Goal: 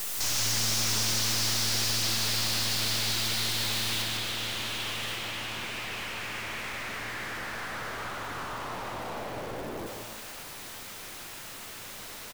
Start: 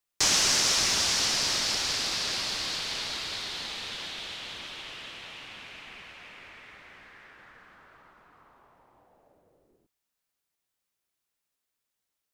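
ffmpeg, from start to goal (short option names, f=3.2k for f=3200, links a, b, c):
-filter_complex "[0:a]aeval=exprs='val(0)+0.5*0.0376*sgn(val(0))':c=same,asetnsamples=n=441:p=0,asendcmd='4.02 highshelf g -3;5.15 highshelf g -8.5',highshelf=f=4.4k:g=5.5,aeval=exprs='(tanh(31.6*val(0)+0.75)-tanh(0.75))/31.6':c=same,asplit=7[a][b][c][d][e][f][g];[b]adelay=152,afreqshift=110,volume=-4.5dB[h];[c]adelay=304,afreqshift=220,volume=-10.9dB[i];[d]adelay=456,afreqshift=330,volume=-17.3dB[j];[e]adelay=608,afreqshift=440,volume=-23.6dB[k];[f]adelay=760,afreqshift=550,volume=-30dB[l];[g]adelay=912,afreqshift=660,volume=-36.4dB[m];[a][h][i][j][k][l][m]amix=inputs=7:normalize=0,volume=1dB"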